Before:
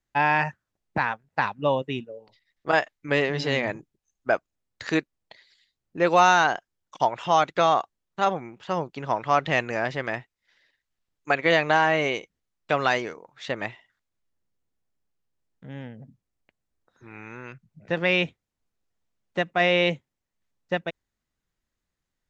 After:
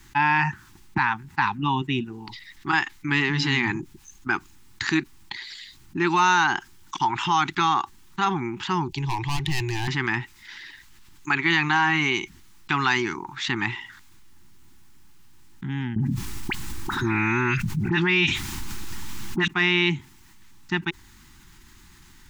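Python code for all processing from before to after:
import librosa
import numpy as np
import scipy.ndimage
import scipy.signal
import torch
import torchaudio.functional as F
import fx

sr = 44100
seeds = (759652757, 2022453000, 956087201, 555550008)

y = fx.chain(x, sr, fx.overload_stage(gain_db=22.5),
    fx.low_shelf(hz=210.0, db=11.5),
    fx.fixed_phaser(hz=560.0, stages=4), at=(8.88, 9.88))
y = fx.chain(y, sr, fx.dispersion(late='highs', ms=49.0, hz=1800.0),
    fx.env_flatten(amount_pct=70), at=(15.96, 19.48))
y = scipy.signal.sosfilt(scipy.signal.ellip(3, 1.0, 40, [370.0, 840.0], 'bandstop', fs=sr, output='sos'), y)
y = fx.env_flatten(y, sr, amount_pct=50)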